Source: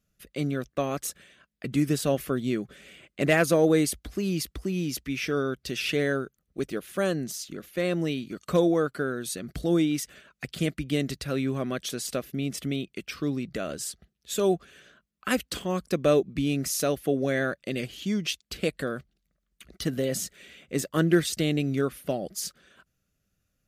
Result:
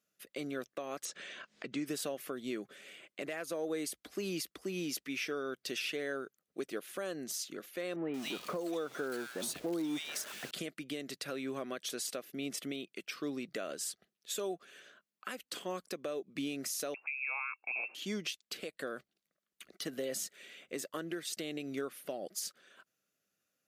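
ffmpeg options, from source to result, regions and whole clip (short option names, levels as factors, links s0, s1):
-filter_complex "[0:a]asettb=1/sr,asplit=3[s0][s1][s2];[s0]atrim=end=1.054[s3];[s1]atrim=start=1.05:end=1.86,asetpts=PTS-STARTPTS,afade=t=in:d=0.004:c=qsin,afade=t=out:st=0.806:d=0.004:c=qsin,lowpass=f=6900:w=0.5412,lowpass=f=6900:w=1.3066,acompressor=mode=upward:threshold=0.0282:ratio=2.5:attack=3.2:release=140:knee=2.83:detection=peak[s4];[s2]atrim=start=1.856[s5];[s3][s4]acrossfade=d=0.004:c1=hsin:c2=qsin[s6];[s6][s5]acrossfade=d=0.004:c1=qsin:c2=hsin,asettb=1/sr,asplit=3[s7][s8][s9];[s7]atrim=end=7.964[s10];[s8]atrim=start=7.96:end=10.51,asetpts=PTS-STARTPTS,afade=t=in:d=0.004:c=qsin,afade=t=out:st=2.546:d=0.004:c=qsin,aeval=exprs='val(0)+0.5*0.0168*sgn(val(0))':c=same,acrossover=split=1800[s11][s12];[s12]adelay=180[s13];[s11][s13]amix=inputs=2:normalize=0,atrim=end_sample=112455[s14];[s9]atrim=start=10.506[s15];[s10][s14]acrossfade=d=0.004:c1=hsin:c2=qsin[s16];[s16][s15]acrossfade=d=0.004:c1=qsin:c2=hsin,asettb=1/sr,asplit=3[s17][s18][s19];[s17]atrim=end=16.944[s20];[s18]atrim=start=16.94:end=17.95,asetpts=PTS-STARTPTS,afade=t=in:d=0.004:c=qsin,afade=t=out:st=1.006:d=0.004:c=qsin,lowpass=f=2400:t=q:w=0.5098,lowpass=f=2400:t=q:w=0.6013,lowpass=f=2400:t=q:w=0.9,lowpass=f=2400:t=q:w=2.563,afreqshift=-2800,highpass=f=290:p=1[s21];[s19]atrim=start=17.946[s22];[s20][s21]acrossfade=d=0.004:c1=hsin:c2=qsin[s23];[s23][s22]acrossfade=d=0.004:c1=qsin:c2=hsin,highpass=340,acompressor=threshold=0.0398:ratio=6,alimiter=level_in=1.06:limit=0.0631:level=0:latency=1:release=360,volume=0.944,volume=0.75"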